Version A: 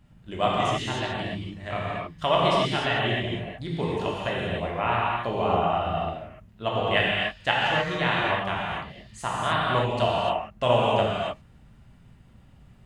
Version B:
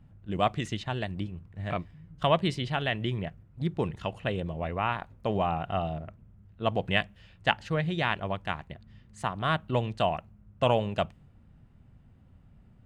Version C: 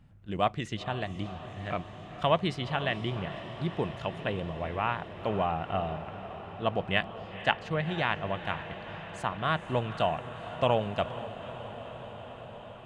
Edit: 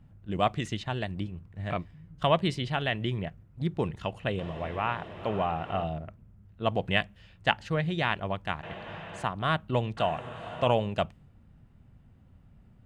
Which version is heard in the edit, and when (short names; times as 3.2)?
B
4.39–5.84 from C
8.63–9.24 from C
9.97–10.67 from C
not used: A